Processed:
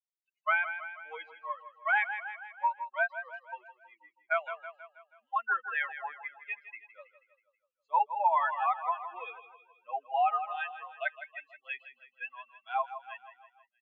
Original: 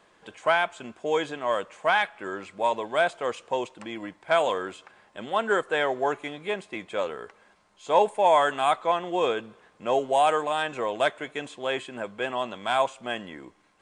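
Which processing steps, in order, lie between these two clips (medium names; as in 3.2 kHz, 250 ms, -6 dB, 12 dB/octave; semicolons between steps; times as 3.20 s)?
expander on every frequency bin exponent 3; elliptic band-pass 790–2500 Hz, stop band 80 dB; feedback delay 161 ms, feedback 53%, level -13 dB; compression 2:1, threshold -33 dBFS, peak gain reduction 6.5 dB; trim +6.5 dB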